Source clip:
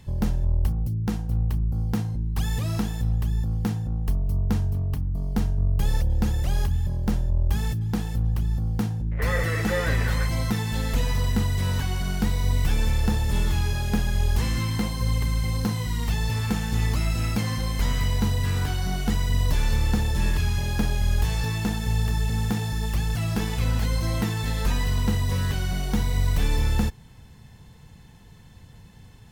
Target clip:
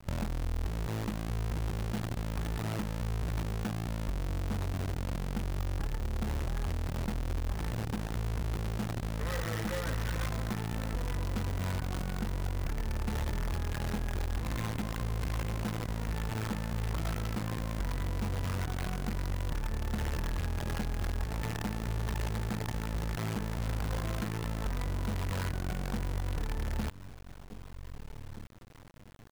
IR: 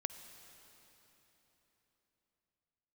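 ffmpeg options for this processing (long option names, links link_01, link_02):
-filter_complex "[0:a]lowpass=frequency=1700:width=0.5412,lowpass=frequency=1700:width=1.3066,asplit=2[link_01][link_02];[link_02]adelay=1574,volume=-15dB,highshelf=frequency=4000:gain=-35.4[link_03];[link_01][link_03]amix=inputs=2:normalize=0,acrusher=bits=5:dc=4:mix=0:aa=0.000001,acompressor=threshold=-26dB:ratio=6,volume=-4dB"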